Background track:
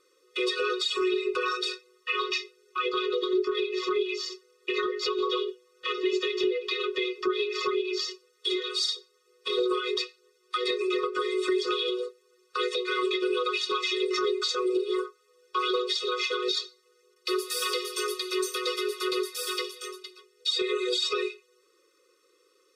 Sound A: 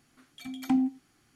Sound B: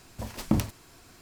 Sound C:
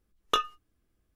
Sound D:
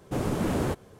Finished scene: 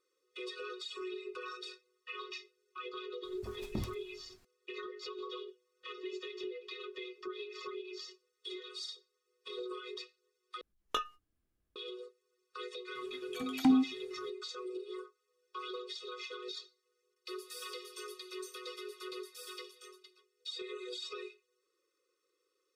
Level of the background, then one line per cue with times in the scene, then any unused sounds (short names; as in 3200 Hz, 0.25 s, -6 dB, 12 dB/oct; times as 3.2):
background track -15.5 dB
3.24 add B -16 dB + low shelf 87 Hz +10.5 dB
10.61 replace with C -8.5 dB
12.95 add A -0.5 dB
not used: D